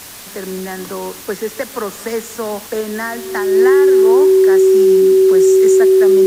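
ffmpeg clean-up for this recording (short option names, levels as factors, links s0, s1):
-af "adeclick=t=4,bandreject=f=92.2:t=h:w=4,bandreject=f=184.4:t=h:w=4,bandreject=f=276.6:t=h:w=4,bandreject=f=368.8:t=h:w=4,bandreject=f=380:w=30,afftdn=nr=26:nf=-33"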